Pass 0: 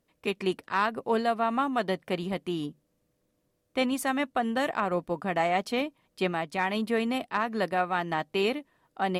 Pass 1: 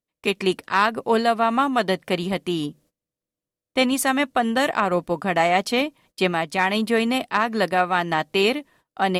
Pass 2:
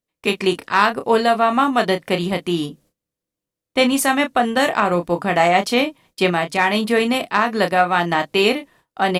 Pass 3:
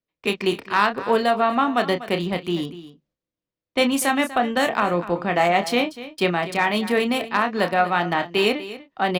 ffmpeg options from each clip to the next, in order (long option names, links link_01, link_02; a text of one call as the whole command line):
ffmpeg -i in.wav -af "agate=range=-23dB:threshold=-59dB:ratio=16:detection=peak,equalizer=frequency=7800:width=0.31:gain=5,volume=6.5dB" out.wav
ffmpeg -i in.wav -filter_complex "[0:a]asplit=2[link_01][link_02];[link_02]adelay=29,volume=-8dB[link_03];[link_01][link_03]amix=inputs=2:normalize=0,volume=3dB" out.wav
ffmpeg -i in.wav -filter_complex "[0:a]acrossover=split=110|1200|5800[link_01][link_02][link_03][link_04];[link_04]acrusher=bits=5:mix=0:aa=0.5[link_05];[link_01][link_02][link_03][link_05]amix=inputs=4:normalize=0,aecho=1:1:244:0.178,volume=-3.5dB" out.wav